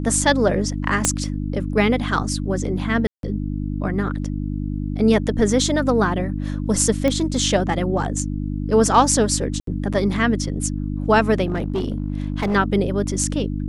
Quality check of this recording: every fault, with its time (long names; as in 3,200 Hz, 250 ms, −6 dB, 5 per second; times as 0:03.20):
mains hum 50 Hz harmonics 6 −25 dBFS
0:01.05: click −2 dBFS
0:03.07–0:03.23: drop-out 162 ms
0:07.08: click −9 dBFS
0:09.60–0:09.67: drop-out 73 ms
0:11.47–0:12.56: clipping −17.5 dBFS